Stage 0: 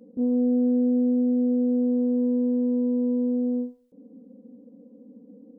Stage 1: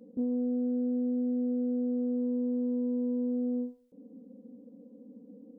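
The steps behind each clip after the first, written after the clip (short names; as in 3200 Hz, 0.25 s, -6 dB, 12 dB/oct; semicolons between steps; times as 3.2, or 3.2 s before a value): compressor, threshold -25 dBFS, peak gain reduction 6 dB; gain -2.5 dB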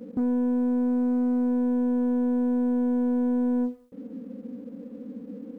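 bell 75 Hz +8.5 dB 1.4 oct; limiter -27 dBFS, peak gain reduction 4.5 dB; sample leveller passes 1; gain +7 dB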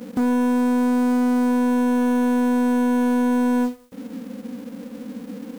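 spectral whitening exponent 0.6; gain +5 dB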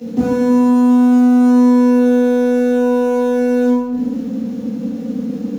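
reverb RT60 1.2 s, pre-delay 3 ms, DRR -7 dB; gain -6 dB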